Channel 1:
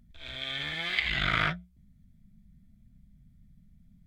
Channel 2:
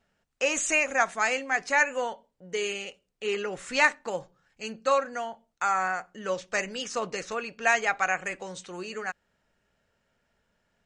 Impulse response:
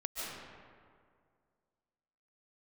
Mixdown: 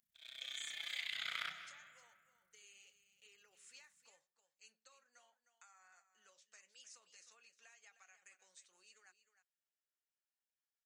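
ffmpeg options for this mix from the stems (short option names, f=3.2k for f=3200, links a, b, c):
-filter_complex "[0:a]tremolo=f=31:d=0.857,volume=-2.5dB,asplit=2[a][b];[b]volume=-8dB[c];[1:a]acrossover=split=190[d][e];[e]acompressor=threshold=-25dB:ratio=6[f];[d][f]amix=inputs=2:normalize=0,flanger=delay=1.1:depth=8.3:regen=-67:speed=0.88:shape=triangular,acompressor=threshold=-36dB:ratio=4,volume=-12.5dB,asplit=2[g][h];[h]volume=-12dB[i];[2:a]atrim=start_sample=2205[j];[c][j]afir=irnorm=-1:irlink=0[k];[i]aecho=0:1:308:1[l];[a][g][k][l]amix=inputs=4:normalize=0,aderivative"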